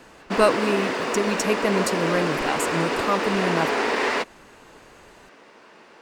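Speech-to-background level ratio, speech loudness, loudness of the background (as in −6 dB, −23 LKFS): −0.5 dB, −25.5 LKFS, −25.0 LKFS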